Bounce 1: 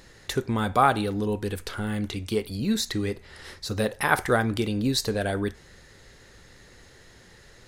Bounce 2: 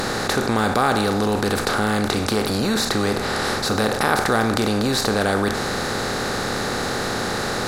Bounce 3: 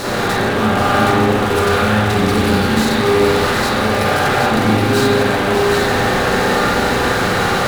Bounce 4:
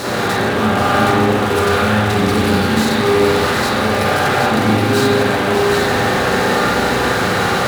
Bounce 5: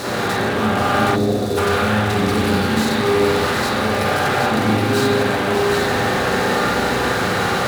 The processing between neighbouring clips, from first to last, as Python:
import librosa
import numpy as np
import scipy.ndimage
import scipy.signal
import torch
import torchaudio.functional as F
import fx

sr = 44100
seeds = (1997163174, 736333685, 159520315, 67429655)

y1 = fx.bin_compress(x, sr, power=0.4)
y1 = fx.env_flatten(y1, sr, amount_pct=50)
y1 = F.gain(torch.from_numpy(y1), -3.5).numpy()
y2 = fx.fuzz(y1, sr, gain_db=31.0, gate_db=-35.0)
y2 = fx.echo_split(y2, sr, split_hz=940.0, low_ms=140, high_ms=771, feedback_pct=52, wet_db=-5)
y2 = fx.rev_spring(y2, sr, rt60_s=1.5, pass_ms=(32, 37, 47), chirp_ms=35, drr_db=-7.5)
y2 = F.gain(torch.from_numpy(y2), -9.0).numpy()
y3 = scipy.signal.sosfilt(scipy.signal.butter(2, 63.0, 'highpass', fs=sr, output='sos'), y2)
y4 = fx.spec_box(y3, sr, start_s=1.15, length_s=0.42, low_hz=740.0, high_hz=3400.0, gain_db=-12)
y4 = F.gain(torch.from_numpy(y4), -3.0).numpy()